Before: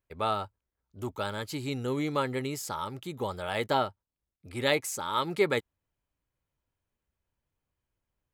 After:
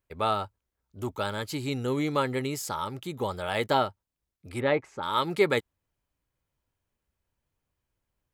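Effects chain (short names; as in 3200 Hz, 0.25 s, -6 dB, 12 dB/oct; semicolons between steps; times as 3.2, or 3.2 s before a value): 4.6–5.03 LPF 1700 Hz 12 dB/oct; gain +2.5 dB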